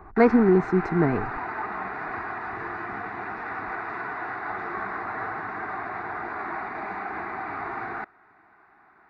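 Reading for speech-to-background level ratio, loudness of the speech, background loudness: 11.0 dB, -21.5 LUFS, -32.5 LUFS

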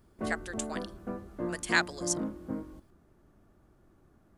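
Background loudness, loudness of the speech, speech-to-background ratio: -38.0 LUFS, -33.0 LUFS, 5.0 dB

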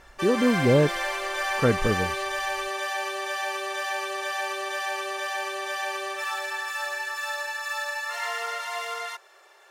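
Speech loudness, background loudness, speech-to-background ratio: -24.0 LUFS, -29.0 LUFS, 5.0 dB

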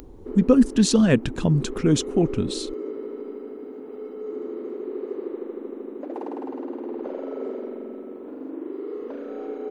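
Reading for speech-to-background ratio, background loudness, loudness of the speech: 13.0 dB, -34.0 LUFS, -21.0 LUFS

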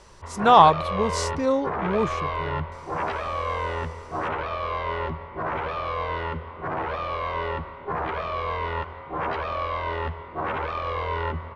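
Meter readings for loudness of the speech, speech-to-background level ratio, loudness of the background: -21.0 LUFS, 8.5 dB, -29.5 LUFS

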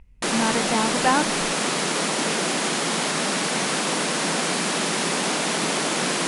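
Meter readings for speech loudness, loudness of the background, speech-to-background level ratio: -25.0 LUFS, -22.5 LUFS, -2.5 dB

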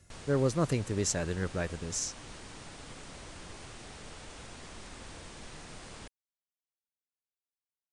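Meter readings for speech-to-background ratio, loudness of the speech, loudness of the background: 15.0 dB, -32.0 LUFS, -47.0 LUFS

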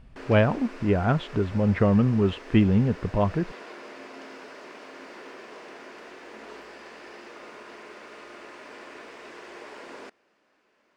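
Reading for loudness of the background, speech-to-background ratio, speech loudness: -43.5 LUFS, 20.0 dB, -23.5 LUFS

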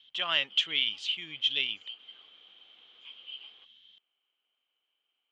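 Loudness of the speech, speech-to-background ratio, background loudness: -28.5 LUFS, 19.0 dB, -47.5 LUFS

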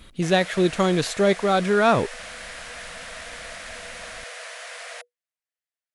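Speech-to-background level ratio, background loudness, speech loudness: 15.5 dB, -36.5 LUFS, -21.0 LUFS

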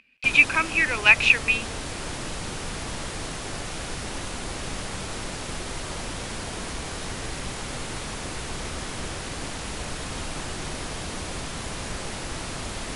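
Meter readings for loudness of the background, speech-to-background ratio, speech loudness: -32.5 LUFS, 14.0 dB, -18.5 LUFS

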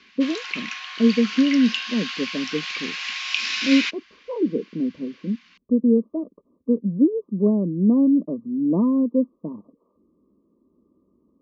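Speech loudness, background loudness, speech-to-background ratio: -22.0 LUFS, -27.5 LUFS, 5.5 dB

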